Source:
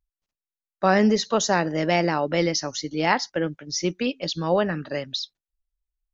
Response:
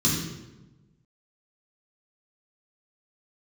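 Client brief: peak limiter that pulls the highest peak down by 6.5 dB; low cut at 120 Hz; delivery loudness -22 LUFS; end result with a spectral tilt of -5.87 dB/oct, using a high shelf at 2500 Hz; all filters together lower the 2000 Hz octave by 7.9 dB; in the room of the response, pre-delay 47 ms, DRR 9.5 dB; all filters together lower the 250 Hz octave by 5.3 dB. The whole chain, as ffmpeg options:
-filter_complex "[0:a]highpass=120,equalizer=f=250:t=o:g=-7,equalizer=f=2k:t=o:g=-7,highshelf=f=2.5k:g=-6,alimiter=limit=-15.5dB:level=0:latency=1,asplit=2[a][b];[1:a]atrim=start_sample=2205,adelay=47[c];[b][c]afir=irnorm=-1:irlink=0,volume=-21dB[d];[a][d]amix=inputs=2:normalize=0,volume=4dB"

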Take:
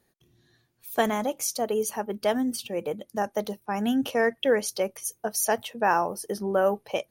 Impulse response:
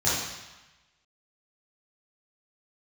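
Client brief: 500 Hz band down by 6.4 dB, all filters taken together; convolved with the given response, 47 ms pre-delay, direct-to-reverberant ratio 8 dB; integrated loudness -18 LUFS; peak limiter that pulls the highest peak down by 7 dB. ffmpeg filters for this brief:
-filter_complex "[0:a]equalizer=f=500:t=o:g=-8,alimiter=limit=-19.5dB:level=0:latency=1,asplit=2[a][b];[1:a]atrim=start_sample=2205,adelay=47[c];[b][c]afir=irnorm=-1:irlink=0,volume=-21.5dB[d];[a][d]amix=inputs=2:normalize=0,volume=13dB"

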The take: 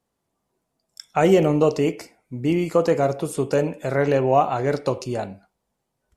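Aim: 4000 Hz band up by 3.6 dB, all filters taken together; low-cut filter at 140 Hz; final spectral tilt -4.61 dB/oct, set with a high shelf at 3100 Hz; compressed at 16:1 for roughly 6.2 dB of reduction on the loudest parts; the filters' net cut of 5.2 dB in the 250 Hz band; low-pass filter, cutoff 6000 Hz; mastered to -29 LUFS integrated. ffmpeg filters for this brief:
-af "highpass=140,lowpass=6k,equalizer=f=250:t=o:g=-7.5,highshelf=f=3.1k:g=4,equalizer=f=4k:t=o:g=3,acompressor=threshold=-19dB:ratio=16,volume=-2.5dB"

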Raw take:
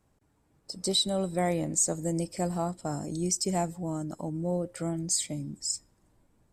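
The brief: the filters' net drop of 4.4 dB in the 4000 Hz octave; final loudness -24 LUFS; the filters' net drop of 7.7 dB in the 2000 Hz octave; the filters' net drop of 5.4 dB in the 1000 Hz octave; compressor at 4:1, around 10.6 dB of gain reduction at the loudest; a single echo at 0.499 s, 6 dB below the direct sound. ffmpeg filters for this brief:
-af "equalizer=f=1k:t=o:g=-8,equalizer=f=2k:t=o:g=-6,equalizer=f=4k:t=o:g=-3.5,acompressor=threshold=-36dB:ratio=4,aecho=1:1:499:0.501,volume=14dB"

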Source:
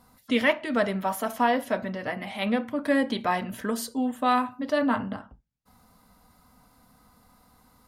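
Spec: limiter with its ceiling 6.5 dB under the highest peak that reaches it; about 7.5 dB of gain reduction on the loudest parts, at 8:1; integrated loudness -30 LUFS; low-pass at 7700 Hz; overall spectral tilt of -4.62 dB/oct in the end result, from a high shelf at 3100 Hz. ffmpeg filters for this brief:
-af "lowpass=7.7k,highshelf=f=3.1k:g=3.5,acompressor=threshold=-25dB:ratio=8,volume=2.5dB,alimiter=limit=-19.5dB:level=0:latency=1"

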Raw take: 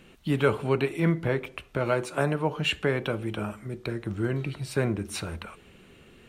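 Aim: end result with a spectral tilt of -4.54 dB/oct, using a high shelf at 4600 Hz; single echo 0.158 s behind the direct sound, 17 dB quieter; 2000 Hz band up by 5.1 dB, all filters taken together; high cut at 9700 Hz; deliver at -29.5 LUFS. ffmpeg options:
-af "lowpass=9.7k,equalizer=f=2k:t=o:g=8.5,highshelf=f=4.6k:g=-8,aecho=1:1:158:0.141,volume=-2dB"

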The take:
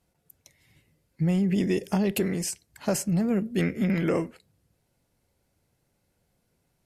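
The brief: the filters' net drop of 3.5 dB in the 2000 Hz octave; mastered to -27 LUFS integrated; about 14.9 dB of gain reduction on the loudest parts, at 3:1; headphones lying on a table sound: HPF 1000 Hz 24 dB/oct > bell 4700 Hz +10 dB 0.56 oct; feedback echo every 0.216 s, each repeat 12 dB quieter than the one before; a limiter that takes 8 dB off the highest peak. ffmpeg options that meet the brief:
-af "equalizer=f=2k:t=o:g=-5,acompressor=threshold=-42dB:ratio=3,alimiter=level_in=9dB:limit=-24dB:level=0:latency=1,volume=-9dB,highpass=f=1k:w=0.5412,highpass=f=1k:w=1.3066,equalizer=f=4.7k:t=o:w=0.56:g=10,aecho=1:1:216|432|648:0.251|0.0628|0.0157,volume=21.5dB"

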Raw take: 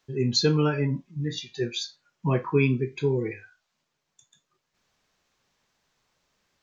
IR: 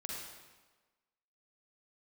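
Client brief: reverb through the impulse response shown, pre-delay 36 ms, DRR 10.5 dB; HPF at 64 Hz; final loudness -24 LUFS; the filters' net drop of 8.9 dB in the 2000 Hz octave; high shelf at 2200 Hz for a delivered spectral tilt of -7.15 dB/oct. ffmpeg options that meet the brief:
-filter_complex "[0:a]highpass=64,equalizer=f=2k:t=o:g=-7,highshelf=f=2.2k:g=-8,asplit=2[a][b];[1:a]atrim=start_sample=2205,adelay=36[c];[b][c]afir=irnorm=-1:irlink=0,volume=-10dB[d];[a][d]amix=inputs=2:normalize=0,volume=3dB"

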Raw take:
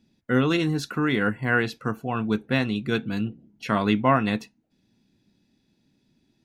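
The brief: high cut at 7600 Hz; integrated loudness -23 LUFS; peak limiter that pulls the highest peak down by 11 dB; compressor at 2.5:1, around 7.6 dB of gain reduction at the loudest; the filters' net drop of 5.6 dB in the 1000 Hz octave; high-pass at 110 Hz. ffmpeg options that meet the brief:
-af "highpass=110,lowpass=7.6k,equalizer=f=1k:t=o:g=-7.5,acompressor=threshold=-28dB:ratio=2.5,volume=13dB,alimiter=limit=-12.5dB:level=0:latency=1"

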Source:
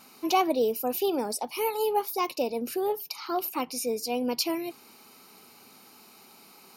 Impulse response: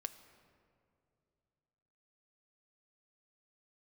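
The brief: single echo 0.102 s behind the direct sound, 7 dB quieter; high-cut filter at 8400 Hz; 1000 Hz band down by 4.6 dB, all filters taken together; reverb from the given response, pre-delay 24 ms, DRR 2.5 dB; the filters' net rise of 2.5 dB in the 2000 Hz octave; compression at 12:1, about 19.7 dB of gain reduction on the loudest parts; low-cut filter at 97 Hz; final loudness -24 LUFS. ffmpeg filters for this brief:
-filter_complex "[0:a]highpass=97,lowpass=8.4k,equalizer=f=1k:t=o:g=-7.5,equalizer=f=2k:t=o:g=4.5,acompressor=threshold=-42dB:ratio=12,aecho=1:1:102:0.447,asplit=2[a][b];[1:a]atrim=start_sample=2205,adelay=24[c];[b][c]afir=irnorm=-1:irlink=0,volume=0dB[d];[a][d]amix=inputs=2:normalize=0,volume=19.5dB"

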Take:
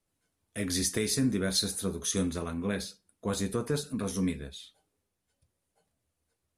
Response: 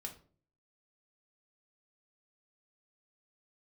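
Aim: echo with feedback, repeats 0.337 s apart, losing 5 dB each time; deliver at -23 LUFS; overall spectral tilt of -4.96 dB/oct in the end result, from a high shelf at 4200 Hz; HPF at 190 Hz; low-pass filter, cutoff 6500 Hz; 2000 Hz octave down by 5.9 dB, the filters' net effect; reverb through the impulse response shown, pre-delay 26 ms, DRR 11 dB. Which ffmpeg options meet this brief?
-filter_complex "[0:a]highpass=190,lowpass=6.5k,equalizer=f=2k:t=o:g=-6,highshelf=f=4.2k:g=-8,aecho=1:1:337|674|1011|1348|1685|2022|2359:0.562|0.315|0.176|0.0988|0.0553|0.031|0.0173,asplit=2[a][b];[1:a]atrim=start_sample=2205,adelay=26[c];[b][c]afir=irnorm=-1:irlink=0,volume=-8dB[d];[a][d]amix=inputs=2:normalize=0,volume=10dB"

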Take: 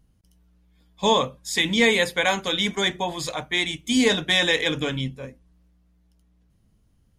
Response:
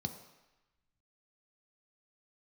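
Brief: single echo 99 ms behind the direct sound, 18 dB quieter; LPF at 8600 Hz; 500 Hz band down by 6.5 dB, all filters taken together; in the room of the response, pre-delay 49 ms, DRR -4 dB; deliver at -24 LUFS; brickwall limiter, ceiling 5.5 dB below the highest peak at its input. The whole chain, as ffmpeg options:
-filter_complex "[0:a]lowpass=8.6k,equalizer=f=500:t=o:g=-7.5,alimiter=limit=-13dB:level=0:latency=1,aecho=1:1:99:0.126,asplit=2[a][b];[1:a]atrim=start_sample=2205,adelay=49[c];[b][c]afir=irnorm=-1:irlink=0,volume=4dB[d];[a][d]amix=inputs=2:normalize=0,volume=-8.5dB"

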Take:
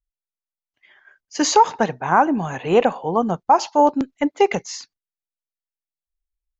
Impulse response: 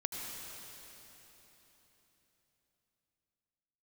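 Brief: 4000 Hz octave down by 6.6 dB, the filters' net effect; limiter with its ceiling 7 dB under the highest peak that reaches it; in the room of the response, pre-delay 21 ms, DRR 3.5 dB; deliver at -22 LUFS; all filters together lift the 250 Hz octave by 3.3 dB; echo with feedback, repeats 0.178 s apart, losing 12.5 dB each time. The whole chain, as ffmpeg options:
-filter_complex "[0:a]equalizer=f=250:t=o:g=4,equalizer=f=4k:t=o:g=-9,alimiter=limit=-10dB:level=0:latency=1,aecho=1:1:178|356|534:0.237|0.0569|0.0137,asplit=2[a][b];[1:a]atrim=start_sample=2205,adelay=21[c];[b][c]afir=irnorm=-1:irlink=0,volume=-5.5dB[d];[a][d]amix=inputs=2:normalize=0,volume=-2dB"

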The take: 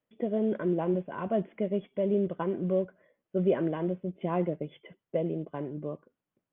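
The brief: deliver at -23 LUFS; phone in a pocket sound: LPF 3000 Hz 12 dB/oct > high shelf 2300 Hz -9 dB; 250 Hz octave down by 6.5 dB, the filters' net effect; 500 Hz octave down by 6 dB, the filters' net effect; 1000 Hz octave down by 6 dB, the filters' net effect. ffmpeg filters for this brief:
-af "lowpass=3k,equalizer=f=250:t=o:g=-9,equalizer=f=500:t=o:g=-3,equalizer=f=1k:t=o:g=-4.5,highshelf=f=2.3k:g=-9,volume=14dB"

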